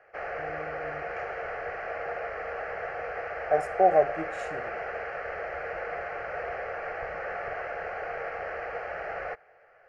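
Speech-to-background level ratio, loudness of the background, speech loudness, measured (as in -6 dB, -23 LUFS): 9.5 dB, -35.0 LUFS, -25.5 LUFS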